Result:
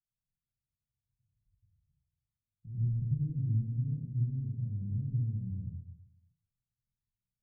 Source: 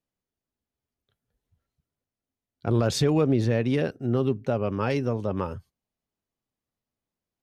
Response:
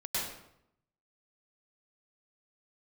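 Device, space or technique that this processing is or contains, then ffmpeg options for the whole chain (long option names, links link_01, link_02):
club heard from the street: -filter_complex "[0:a]alimiter=limit=-20dB:level=0:latency=1,lowpass=frequency=150:width=0.5412,lowpass=frequency=150:width=1.3066[link_01];[1:a]atrim=start_sample=2205[link_02];[link_01][link_02]afir=irnorm=-1:irlink=0,volume=-4dB"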